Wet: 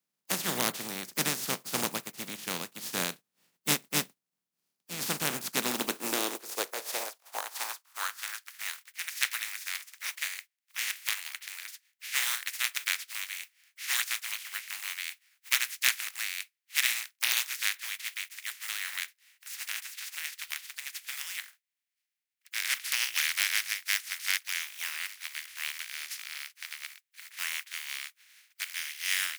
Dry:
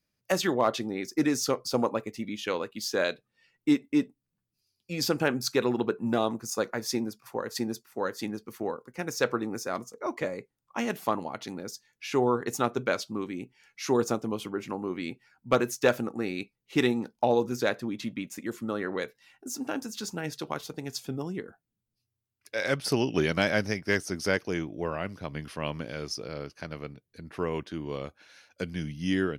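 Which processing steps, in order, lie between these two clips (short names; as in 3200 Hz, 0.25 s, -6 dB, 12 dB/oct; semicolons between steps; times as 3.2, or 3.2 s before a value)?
spectral contrast lowered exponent 0.19; high-pass sweep 170 Hz -> 2000 Hz, 5.38–8.7; gain -5 dB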